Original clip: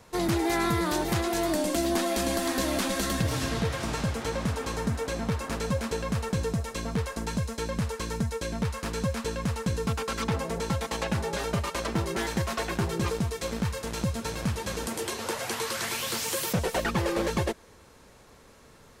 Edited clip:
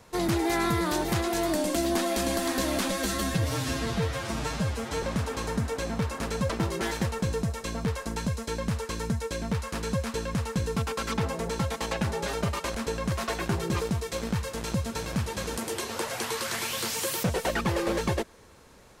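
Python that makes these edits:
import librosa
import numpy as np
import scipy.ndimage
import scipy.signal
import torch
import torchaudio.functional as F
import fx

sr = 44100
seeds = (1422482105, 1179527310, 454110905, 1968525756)

y = fx.edit(x, sr, fx.stretch_span(start_s=2.91, length_s=1.41, factor=1.5),
    fx.swap(start_s=5.79, length_s=0.37, other_s=11.85, other_length_s=0.56), tone=tone)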